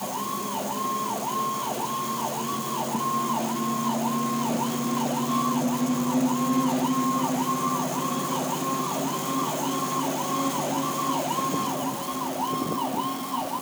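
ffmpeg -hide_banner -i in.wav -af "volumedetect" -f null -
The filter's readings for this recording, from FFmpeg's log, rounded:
mean_volume: -26.6 dB
max_volume: -13.5 dB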